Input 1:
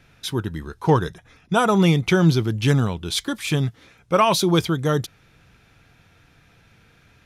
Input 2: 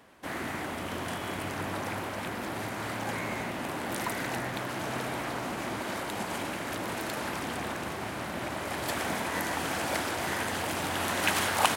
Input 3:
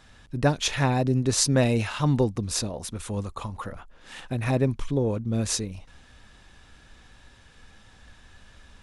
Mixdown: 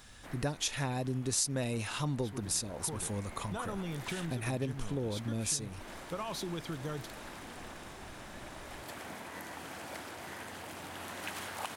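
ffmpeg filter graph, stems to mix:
ffmpeg -i stem1.wav -i stem2.wav -i stem3.wav -filter_complex "[0:a]acompressor=threshold=-19dB:ratio=6,adelay=2000,volume=-13.5dB[link_01];[1:a]volume=-13dB[link_02];[2:a]aemphasis=mode=production:type=50fm,volume=-2.5dB[link_03];[link_01][link_02][link_03]amix=inputs=3:normalize=0,acompressor=threshold=-35dB:ratio=2.5" out.wav

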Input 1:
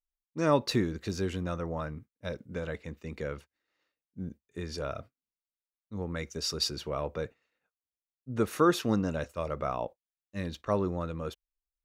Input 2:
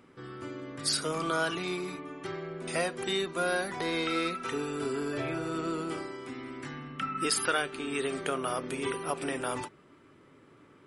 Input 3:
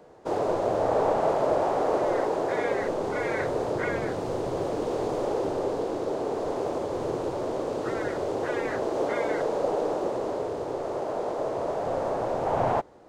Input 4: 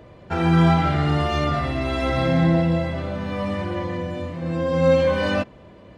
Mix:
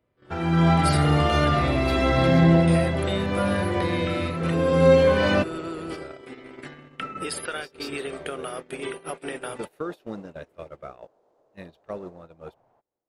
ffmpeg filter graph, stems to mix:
ffmpeg -i stem1.wav -i stem2.wav -i stem3.wav -i stem4.wav -filter_complex "[0:a]adelay=1200,volume=-4dB[link_01];[1:a]volume=3dB[link_02];[2:a]acompressor=threshold=-32dB:ratio=6,volume=-17.5dB[link_03];[3:a]volume=-7.5dB[link_04];[link_01][link_02]amix=inputs=2:normalize=0,equalizer=frequency=100:width_type=o:width=0.67:gain=-10,equalizer=frequency=250:width_type=o:width=0.67:gain=-4,equalizer=frequency=1000:width_type=o:width=0.67:gain=-7,equalizer=frequency=6300:width_type=o:width=0.67:gain=-10,acompressor=threshold=-40dB:ratio=4,volume=0dB[link_05];[link_03][link_04][link_05]amix=inputs=3:normalize=0,agate=range=-22dB:threshold=-41dB:ratio=16:detection=peak,dynaudnorm=framelen=460:gausssize=3:maxgain=9dB" out.wav

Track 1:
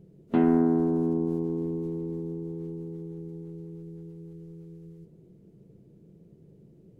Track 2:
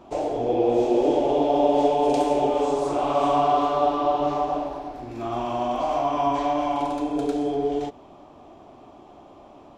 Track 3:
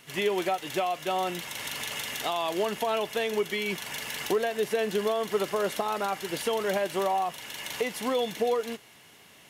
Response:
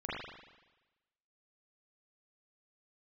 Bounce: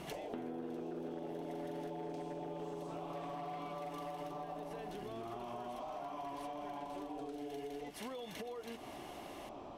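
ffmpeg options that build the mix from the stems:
-filter_complex "[0:a]highpass=frequency=250:poles=1,aemphasis=mode=production:type=cd,acompressor=threshold=-34dB:ratio=2.5,volume=2.5dB[link_01];[1:a]bandreject=frequency=50:width_type=h:width=6,bandreject=frequency=100:width_type=h:width=6,bandreject=frequency=150:width_type=h:width=6,bandreject=frequency=200:width_type=h:width=6,bandreject=frequency=250:width_type=h:width=6,bandreject=frequency=300:width_type=h:width=6,volume=-1dB[link_02];[2:a]highshelf=frequency=11000:gain=-5,alimiter=level_in=1dB:limit=-24dB:level=0:latency=1:release=363,volume=-1dB,volume=-1.5dB,asplit=3[link_03][link_04][link_05];[link_03]atrim=end=1.9,asetpts=PTS-STARTPTS,afade=type=out:start_time=1.896:duration=0.004:curve=hsin[link_06];[link_04]atrim=start=1.9:end=2.59,asetpts=PTS-STARTPTS,volume=0[link_07];[link_05]atrim=start=2.59,asetpts=PTS-STARTPTS,afade=type=in:duration=0.004:curve=hsin[link_08];[link_06][link_07][link_08]concat=n=3:v=0:a=1[link_09];[link_02][link_09]amix=inputs=2:normalize=0,asoftclip=type=hard:threshold=-17.5dB,acompressor=threshold=-36dB:ratio=3,volume=0dB[link_10];[link_01][link_10]amix=inputs=2:normalize=0,bandreject=frequency=7000:width=16,acompressor=threshold=-43dB:ratio=4"

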